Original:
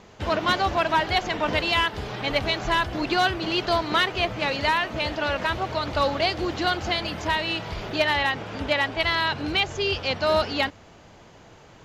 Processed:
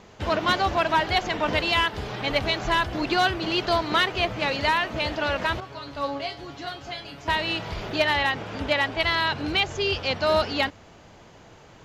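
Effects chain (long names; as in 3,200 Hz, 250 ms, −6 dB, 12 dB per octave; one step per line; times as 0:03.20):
0:05.60–0:07.28: tuned comb filter 140 Hz, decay 0.23 s, harmonics all, mix 90%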